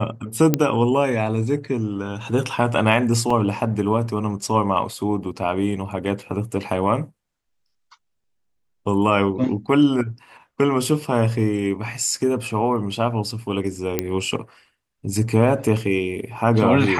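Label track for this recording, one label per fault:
0.540000	0.540000	pop -3 dBFS
3.300000	3.300000	dropout 4.3 ms
13.990000	13.990000	pop -5 dBFS

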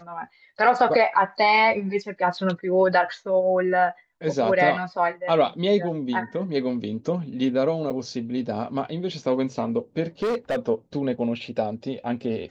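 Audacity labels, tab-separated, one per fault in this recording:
7.900000	7.910000	dropout 5.8 ms
10.220000	10.560000	clipped -21 dBFS

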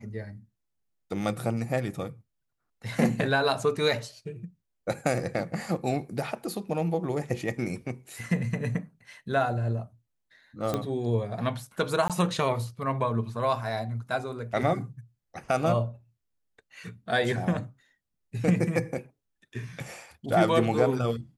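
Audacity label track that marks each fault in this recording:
10.740000	10.740000	pop -15 dBFS
12.080000	12.100000	dropout 17 ms

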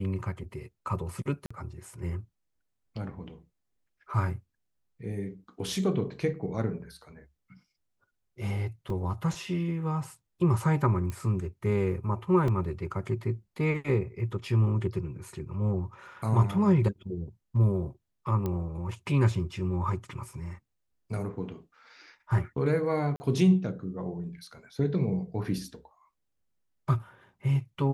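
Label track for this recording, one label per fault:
1.460000	1.500000	dropout 45 ms
8.900000	8.900000	dropout 2.4 ms
11.100000	11.100000	pop -22 dBFS
12.480000	12.480000	dropout 2.4 ms
18.460000	18.460000	pop -19 dBFS
23.160000	23.200000	dropout 40 ms

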